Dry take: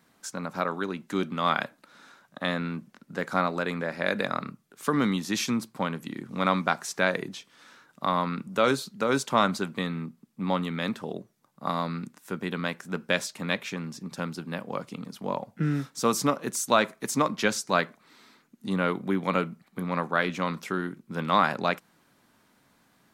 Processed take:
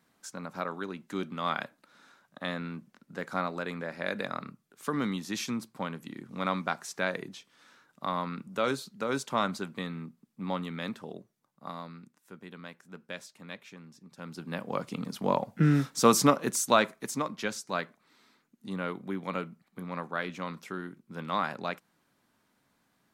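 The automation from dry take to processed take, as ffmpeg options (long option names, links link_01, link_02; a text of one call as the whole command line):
ffmpeg -i in.wav -af "volume=12.5dB,afade=type=out:start_time=10.82:duration=1.22:silence=0.354813,afade=type=in:start_time=14.17:duration=0.3:silence=0.251189,afade=type=in:start_time=14.47:duration=0.69:silence=0.473151,afade=type=out:start_time=16.15:duration=1.09:silence=0.266073" out.wav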